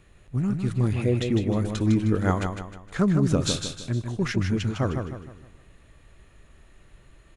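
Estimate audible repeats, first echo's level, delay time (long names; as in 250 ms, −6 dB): 4, −6.0 dB, 155 ms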